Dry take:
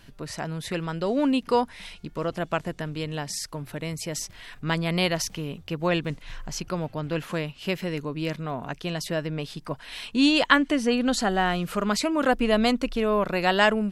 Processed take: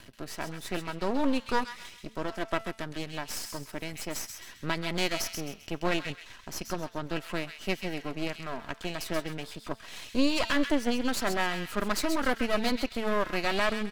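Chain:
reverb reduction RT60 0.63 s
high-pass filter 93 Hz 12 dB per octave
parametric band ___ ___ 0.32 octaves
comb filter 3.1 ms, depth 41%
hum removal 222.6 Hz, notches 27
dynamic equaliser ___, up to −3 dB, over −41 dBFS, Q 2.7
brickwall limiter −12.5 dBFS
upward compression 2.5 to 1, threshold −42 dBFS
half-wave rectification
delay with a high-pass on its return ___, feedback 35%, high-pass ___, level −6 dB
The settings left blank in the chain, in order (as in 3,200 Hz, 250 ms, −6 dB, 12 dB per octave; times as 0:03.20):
750 Hz, −3.5 dB, 3,000 Hz, 132 ms, 1,700 Hz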